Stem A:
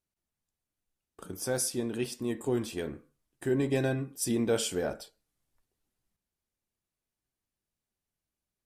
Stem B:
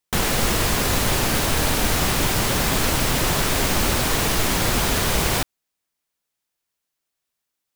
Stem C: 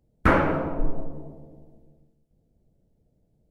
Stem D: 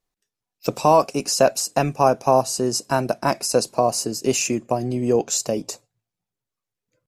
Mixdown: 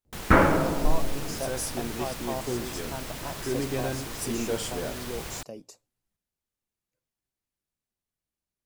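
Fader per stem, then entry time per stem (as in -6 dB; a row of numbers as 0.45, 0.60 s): -2.5, -17.0, +1.0, -18.0 dB; 0.00, 0.00, 0.05, 0.00 s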